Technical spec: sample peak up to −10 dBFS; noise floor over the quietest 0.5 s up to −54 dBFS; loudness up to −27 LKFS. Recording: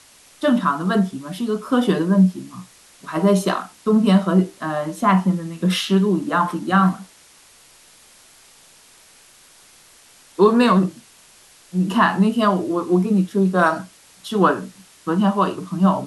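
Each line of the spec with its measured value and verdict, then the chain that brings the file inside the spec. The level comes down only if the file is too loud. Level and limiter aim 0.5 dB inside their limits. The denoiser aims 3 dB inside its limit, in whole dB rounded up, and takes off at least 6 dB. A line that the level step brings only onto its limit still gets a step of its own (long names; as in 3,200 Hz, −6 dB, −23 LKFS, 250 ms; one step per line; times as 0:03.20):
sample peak −4.0 dBFS: out of spec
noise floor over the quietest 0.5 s −50 dBFS: out of spec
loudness −19.0 LKFS: out of spec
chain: level −8.5 dB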